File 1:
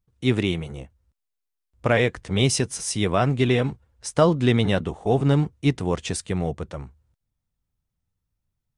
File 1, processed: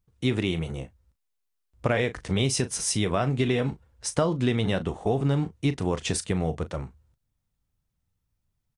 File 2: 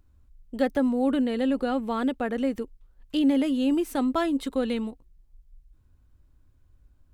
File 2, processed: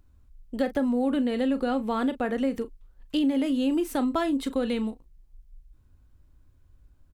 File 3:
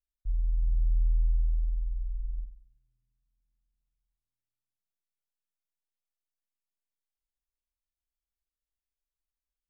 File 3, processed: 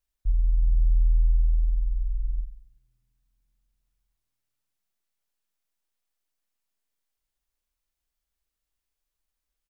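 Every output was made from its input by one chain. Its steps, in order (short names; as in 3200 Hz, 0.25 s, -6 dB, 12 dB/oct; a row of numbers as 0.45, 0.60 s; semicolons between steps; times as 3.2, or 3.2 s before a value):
doubler 37 ms -13.5 dB; compressor 4:1, threshold -23 dBFS; match loudness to -27 LUFS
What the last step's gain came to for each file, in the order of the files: +1.5, +1.5, +8.0 dB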